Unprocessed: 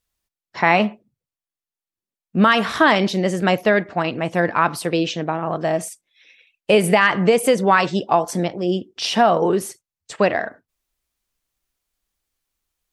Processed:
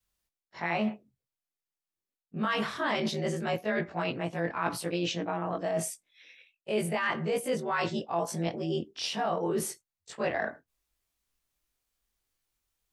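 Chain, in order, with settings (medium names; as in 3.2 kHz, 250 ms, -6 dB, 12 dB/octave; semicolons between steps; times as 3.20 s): short-time spectra conjugated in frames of 47 ms; reverse; compression 5:1, threshold -28 dBFS, peak gain reduction 14.5 dB; reverse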